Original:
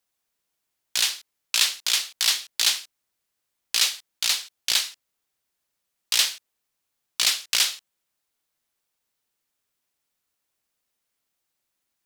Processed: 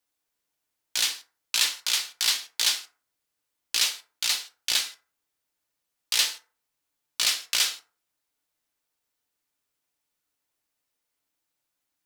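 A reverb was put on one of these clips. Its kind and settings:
feedback delay network reverb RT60 0.39 s, low-frequency decay 0.8×, high-frequency decay 0.5×, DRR 4.5 dB
level −3 dB

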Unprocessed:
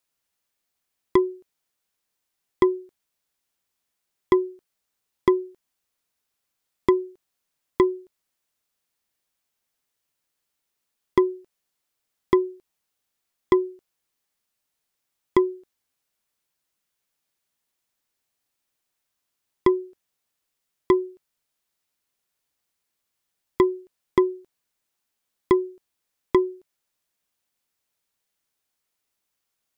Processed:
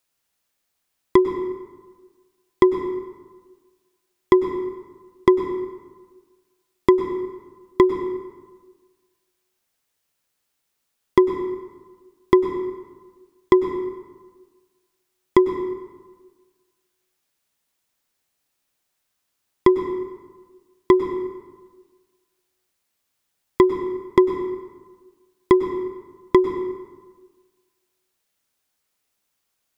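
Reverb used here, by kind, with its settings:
dense smooth reverb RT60 1.4 s, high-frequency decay 0.6×, pre-delay 90 ms, DRR 8 dB
level +4 dB

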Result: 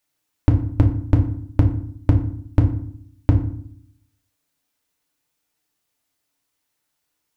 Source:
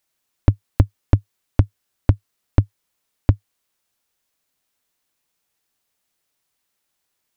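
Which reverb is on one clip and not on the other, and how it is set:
feedback delay network reverb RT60 0.6 s, low-frequency decay 1.5×, high-frequency decay 0.65×, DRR 1.5 dB
level −2.5 dB

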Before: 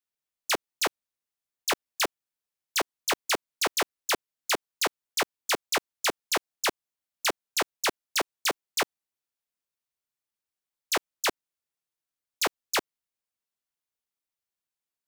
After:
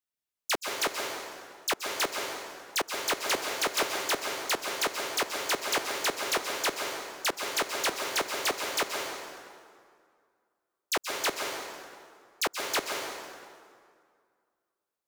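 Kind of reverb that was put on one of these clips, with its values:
dense smooth reverb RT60 2.1 s, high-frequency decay 0.7×, pre-delay 115 ms, DRR 1.5 dB
level −2.5 dB

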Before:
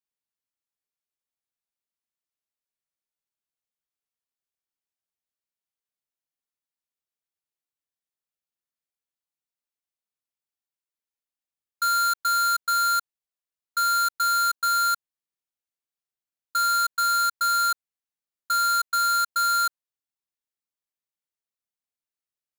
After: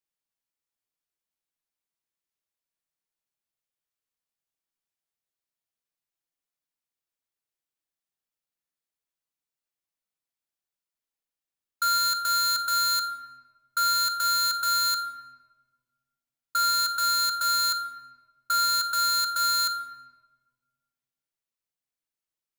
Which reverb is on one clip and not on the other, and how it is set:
rectangular room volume 1,000 cubic metres, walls mixed, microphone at 0.66 metres

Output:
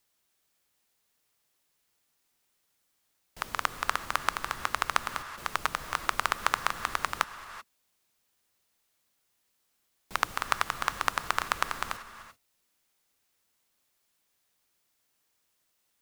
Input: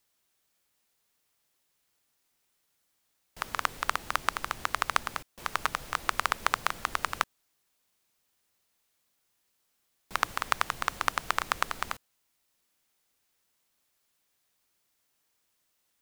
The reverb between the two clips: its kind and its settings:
reverb whose tail is shaped and stops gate 410 ms rising, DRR 12 dB

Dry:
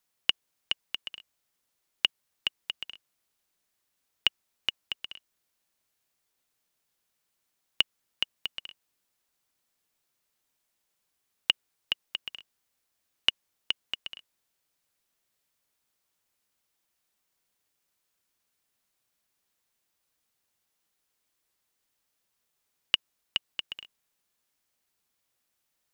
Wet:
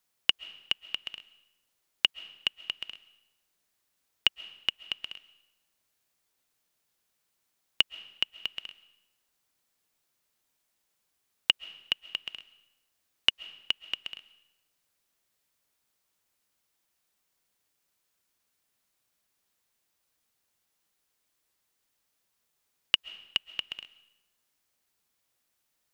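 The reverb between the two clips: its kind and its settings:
comb and all-pass reverb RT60 0.9 s, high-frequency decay 0.9×, pre-delay 95 ms, DRR 18.5 dB
level +1 dB

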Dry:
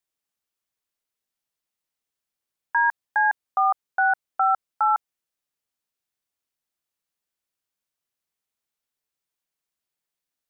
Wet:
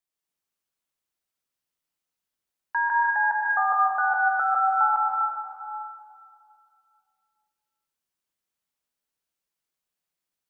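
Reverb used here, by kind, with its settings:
dense smooth reverb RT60 2.4 s, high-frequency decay 0.75×, pre-delay 110 ms, DRR −3 dB
level −4.5 dB

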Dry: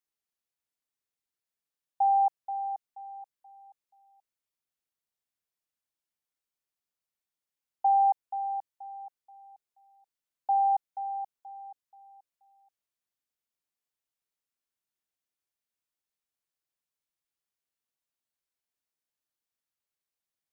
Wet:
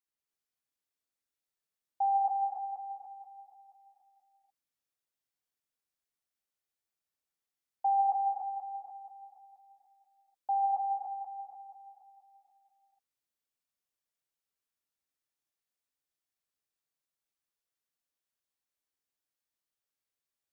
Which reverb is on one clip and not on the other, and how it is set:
reverb whose tail is shaped and stops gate 320 ms rising, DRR −1.5 dB
level −5 dB

